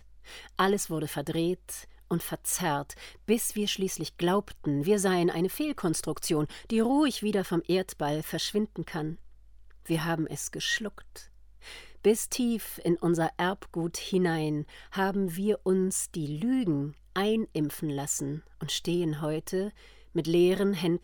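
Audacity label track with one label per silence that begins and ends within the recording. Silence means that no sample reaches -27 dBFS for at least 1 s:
10.870000	12.050000	silence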